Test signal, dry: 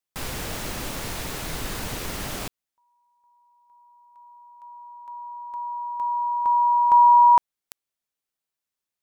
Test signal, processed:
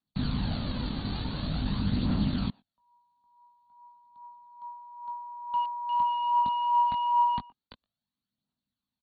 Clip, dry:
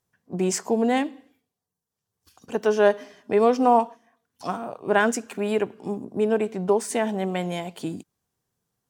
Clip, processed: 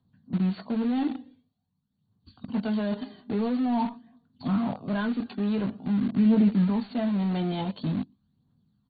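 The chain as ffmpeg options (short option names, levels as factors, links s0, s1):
-filter_complex "[0:a]highpass=f=64:p=1,asplit=2[s0][s1];[s1]adelay=120,highpass=300,lowpass=3400,asoftclip=type=hard:threshold=0.168,volume=0.0355[s2];[s0][s2]amix=inputs=2:normalize=0,acrossover=split=190|2800[s3][s4][s5];[s4]acompressor=threshold=0.0708:ratio=10:attack=6.3:release=21:knee=2.83:detection=peak[s6];[s3][s6][s5]amix=inputs=3:normalize=0,crystalizer=i=2.5:c=0,lowshelf=f=310:t=q:w=3:g=8.5,asplit=2[s7][s8];[s8]adelay=20,volume=0.447[s9];[s7][s9]amix=inputs=2:normalize=0,areverse,acompressor=threshold=0.0631:ratio=5:attack=1.7:release=124:knee=1:detection=rms,areverse,lowpass=8800,equalizer=f=2200:t=o:w=0.99:g=-14.5,aphaser=in_gain=1:out_gain=1:delay=2.7:decay=0.45:speed=0.47:type=triangular,asplit=2[s10][s11];[s11]acrusher=bits=4:mix=0:aa=0.000001,volume=0.266[s12];[s10][s12]amix=inputs=2:normalize=0" -ar 32000 -c:a ac3 -b:a 32k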